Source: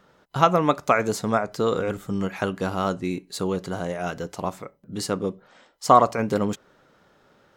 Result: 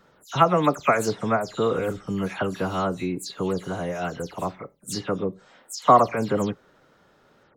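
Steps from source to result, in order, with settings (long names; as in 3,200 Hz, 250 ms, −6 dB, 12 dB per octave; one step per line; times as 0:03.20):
every frequency bin delayed by itself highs early, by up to 132 ms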